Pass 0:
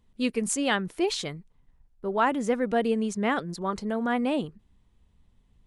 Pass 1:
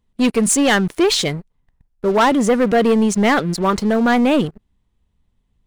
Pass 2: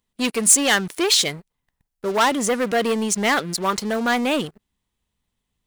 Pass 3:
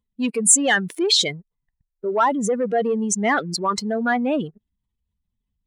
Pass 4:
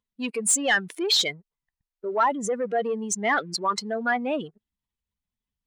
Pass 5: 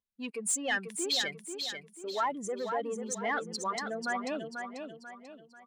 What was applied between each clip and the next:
waveshaping leveller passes 3; trim +3 dB
tilt EQ +2.5 dB/octave; trim -3.5 dB
spectral contrast enhancement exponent 1.9
overdrive pedal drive 11 dB, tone 6.1 kHz, clips at -3 dBFS; trim -7 dB
feedback delay 490 ms, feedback 40%, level -6.5 dB; trim -9 dB

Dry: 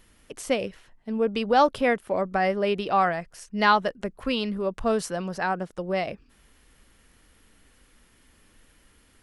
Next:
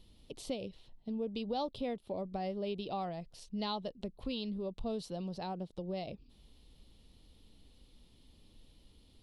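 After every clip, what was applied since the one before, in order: FFT filter 140 Hz 0 dB, 880 Hz -8 dB, 1.6 kHz -24 dB, 3.9 kHz +3 dB, 6.4 kHz -13 dB; compression 2:1, threshold -41 dBFS, peak gain reduction 10.5 dB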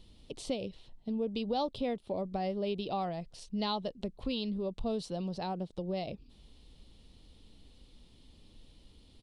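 resampled via 22.05 kHz; trim +3.5 dB

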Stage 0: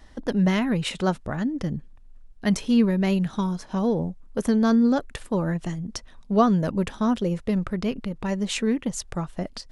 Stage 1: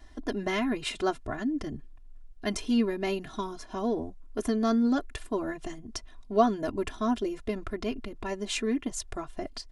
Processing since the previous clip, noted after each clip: comb 2.9 ms, depth 95%; trim -6 dB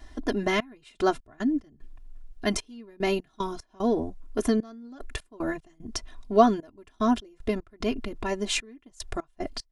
trance gate "xxx..x.x.x" 75 bpm -24 dB; trim +4.5 dB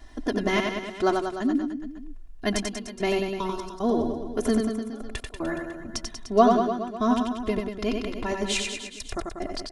reverse bouncing-ball echo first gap 90 ms, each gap 1.1×, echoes 5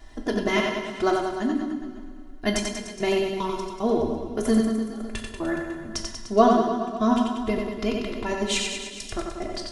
two-slope reverb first 0.45 s, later 2.7 s, from -15 dB, DRR 4 dB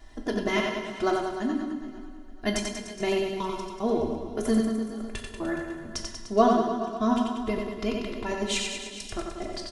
feedback delay 440 ms, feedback 42%, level -20 dB; trim -3 dB

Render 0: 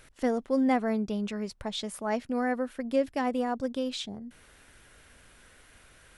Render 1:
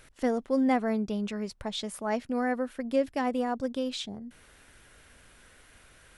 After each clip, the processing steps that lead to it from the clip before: no audible change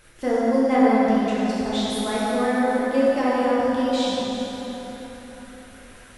plate-style reverb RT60 4.1 s, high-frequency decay 0.7×, DRR -9 dB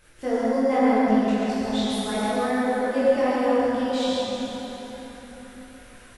chorus voices 2, 1.1 Hz, delay 21 ms, depth 3 ms; on a send: delay 135 ms -5.5 dB

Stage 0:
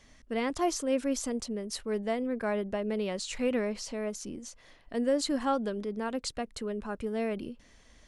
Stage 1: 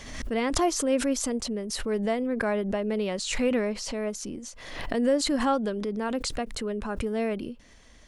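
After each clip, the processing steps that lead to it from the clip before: swell ahead of each attack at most 53 dB/s; trim +3.5 dB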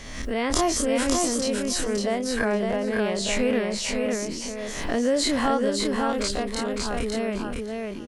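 every event in the spectrogram widened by 60 ms; on a send: feedback delay 556 ms, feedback 16%, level -3.5 dB; on the sum: trim -1.5 dB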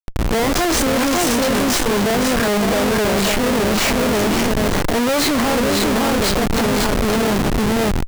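feedback echo behind a high-pass 506 ms, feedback 56%, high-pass 2.1 kHz, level -6 dB; Schmitt trigger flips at -28.5 dBFS; trim +8.5 dB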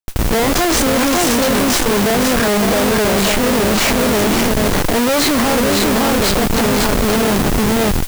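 modulation noise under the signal 13 dB; trim +2.5 dB

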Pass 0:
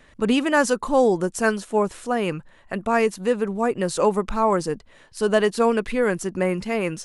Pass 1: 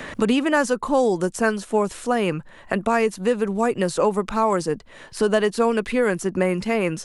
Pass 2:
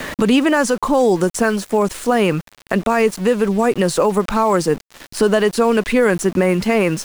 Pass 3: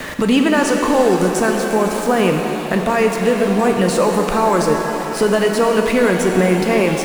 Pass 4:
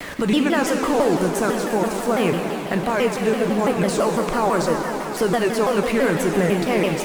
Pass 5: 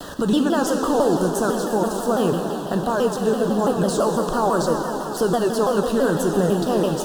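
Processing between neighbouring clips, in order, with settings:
three bands compressed up and down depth 70%
peak limiter -13.5 dBFS, peak gain reduction 6 dB; small samples zeroed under -37.5 dBFS; trim +7.5 dB
pitch-shifted reverb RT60 3.6 s, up +7 st, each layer -8 dB, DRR 2.5 dB; trim -1 dB
vibrato with a chosen wave saw down 6 Hz, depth 250 cents; trim -4.5 dB
Butterworth band-stop 2.2 kHz, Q 1.4

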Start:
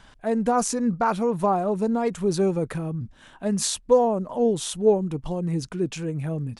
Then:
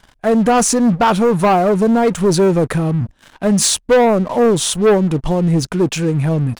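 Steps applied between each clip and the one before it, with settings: waveshaping leveller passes 3; trim +1.5 dB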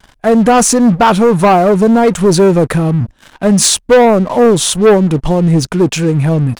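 vibrato 0.49 Hz 15 cents; trim +4.5 dB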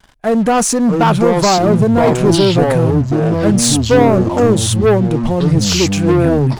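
ever faster or slower copies 550 ms, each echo -6 st, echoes 2; trim -4.5 dB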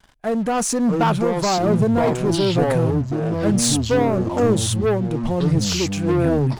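tremolo 1.1 Hz, depth 30%; trim -5.5 dB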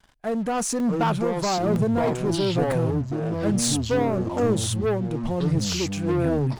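crackling interface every 0.96 s, samples 64, zero, from 0.80 s; trim -4.5 dB

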